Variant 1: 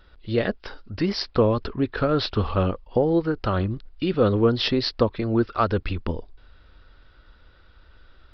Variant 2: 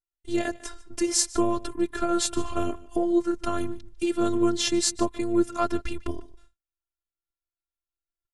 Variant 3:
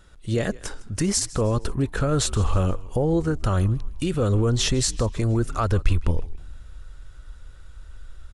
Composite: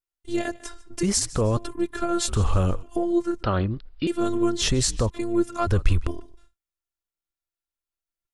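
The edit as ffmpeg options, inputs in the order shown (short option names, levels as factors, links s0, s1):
-filter_complex "[2:a]asplit=4[s0][s1][s2][s3];[1:a]asplit=6[s4][s5][s6][s7][s8][s9];[s4]atrim=end=1.032[s10];[s0]atrim=start=1.028:end=1.572[s11];[s5]atrim=start=1.568:end=2.282[s12];[s1]atrim=start=2.278:end=2.832[s13];[s6]atrim=start=2.828:end=3.432[s14];[0:a]atrim=start=3.428:end=4.072[s15];[s7]atrim=start=4.068:end=4.622[s16];[s2]atrim=start=4.618:end=5.102[s17];[s8]atrim=start=5.098:end=5.672[s18];[s3]atrim=start=5.668:end=6.072[s19];[s9]atrim=start=6.068[s20];[s10][s11]acrossfade=d=0.004:c1=hsin:c2=hsin[s21];[s21][s12]acrossfade=d=0.004:c1=hsin:c2=hsin[s22];[s22][s13]acrossfade=d=0.004:c1=hsin:c2=hsin[s23];[s23][s14]acrossfade=d=0.004:c1=hsin:c2=hsin[s24];[s24][s15]acrossfade=d=0.004:c1=hsin:c2=hsin[s25];[s25][s16]acrossfade=d=0.004:c1=hsin:c2=hsin[s26];[s26][s17]acrossfade=d=0.004:c1=hsin:c2=hsin[s27];[s27][s18]acrossfade=d=0.004:c1=hsin:c2=hsin[s28];[s28][s19]acrossfade=d=0.004:c1=hsin:c2=hsin[s29];[s29][s20]acrossfade=d=0.004:c1=hsin:c2=hsin"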